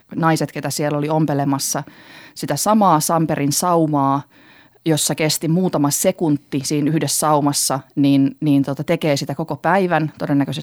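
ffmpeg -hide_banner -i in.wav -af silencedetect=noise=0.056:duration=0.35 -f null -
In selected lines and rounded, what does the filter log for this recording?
silence_start: 1.82
silence_end: 2.38 | silence_duration: 0.56
silence_start: 4.21
silence_end: 4.86 | silence_duration: 0.65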